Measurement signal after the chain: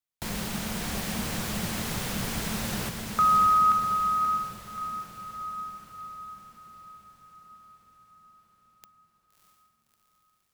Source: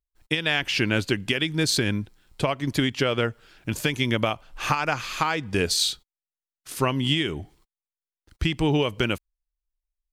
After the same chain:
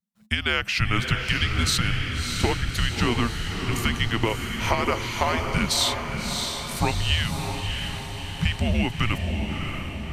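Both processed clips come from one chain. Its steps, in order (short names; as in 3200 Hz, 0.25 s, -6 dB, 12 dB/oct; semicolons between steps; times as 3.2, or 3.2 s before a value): diffused feedback echo 0.633 s, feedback 58%, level -5 dB; frequency shift -230 Hz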